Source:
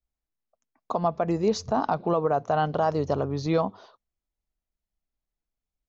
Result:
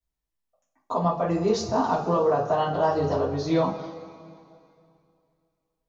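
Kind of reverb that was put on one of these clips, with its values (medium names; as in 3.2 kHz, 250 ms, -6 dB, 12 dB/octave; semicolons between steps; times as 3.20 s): two-slope reverb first 0.31 s, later 2.5 s, from -18 dB, DRR -8 dB; trim -6.5 dB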